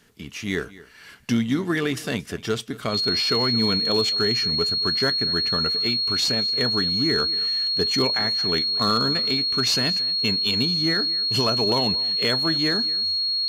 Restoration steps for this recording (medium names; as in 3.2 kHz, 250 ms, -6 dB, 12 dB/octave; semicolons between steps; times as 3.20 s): clip repair -13 dBFS; band-stop 4.3 kHz, Q 30; inverse comb 227 ms -19.5 dB